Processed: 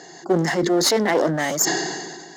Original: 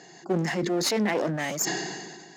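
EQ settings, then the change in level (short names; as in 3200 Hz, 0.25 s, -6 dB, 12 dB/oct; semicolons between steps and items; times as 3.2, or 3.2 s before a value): thirty-one-band EQ 125 Hz -9 dB, 200 Hz -8 dB, 2500 Hz -11 dB; +8.0 dB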